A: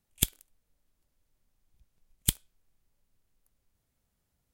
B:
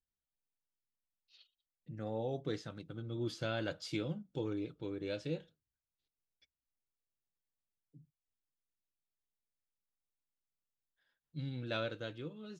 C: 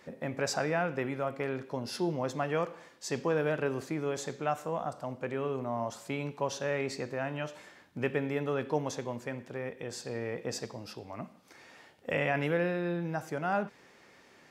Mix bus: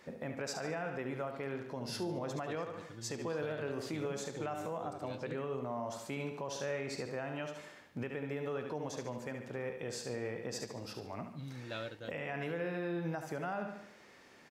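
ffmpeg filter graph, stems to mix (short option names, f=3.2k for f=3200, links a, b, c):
-filter_complex "[1:a]volume=-4.5dB[a];[2:a]volume=-1.5dB,asplit=2[b][c];[c]volume=-8dB,aecho=0:1:72|144|216|288|360|432:1|0.43|0.185|0.0795|0.0342|0.0147[d];[a][b][d]amix=inputs=3:normalize=0,alimiter=level_in=4.5dB:limit=-24dB:level=0:latency=1:release=182,volume=-4.5dB"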